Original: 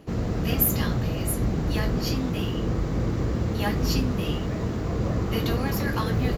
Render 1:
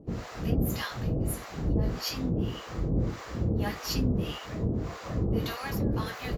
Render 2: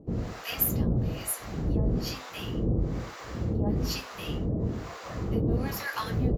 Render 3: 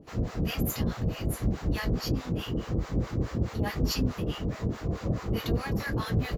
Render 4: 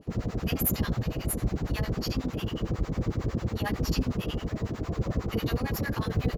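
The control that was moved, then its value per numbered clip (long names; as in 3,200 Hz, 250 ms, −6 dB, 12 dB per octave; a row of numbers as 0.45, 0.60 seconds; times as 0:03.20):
two-band tremolo in antiphase, speed: 1.7, 1.1, 4.7, 11 Hertz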